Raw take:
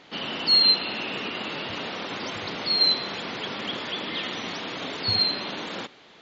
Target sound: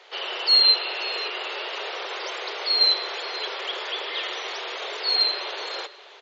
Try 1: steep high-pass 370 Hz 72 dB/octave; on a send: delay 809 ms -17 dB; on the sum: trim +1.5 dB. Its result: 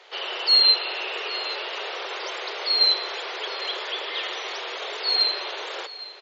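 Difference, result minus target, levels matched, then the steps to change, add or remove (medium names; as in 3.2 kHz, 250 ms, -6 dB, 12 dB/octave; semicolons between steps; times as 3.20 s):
echo 277 ms late
change: delay 532 ms -17 dB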